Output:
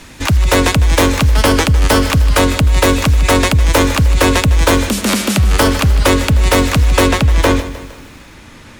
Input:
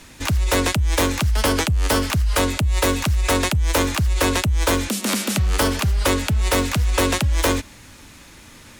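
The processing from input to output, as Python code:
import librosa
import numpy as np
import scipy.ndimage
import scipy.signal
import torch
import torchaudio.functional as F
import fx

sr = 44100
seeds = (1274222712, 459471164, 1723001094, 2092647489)

y = fx.high_shelf(x, sr, hz=5000.0, db=fx.steps((0.0, -4.5), (7.07, -12.0)))
y = fx.echo_crushed(y, sr, ms=154, feedback_pct=55, bits=7, wet_db=-14.0)
y = y * librosa.db_to_amplitude(8.0)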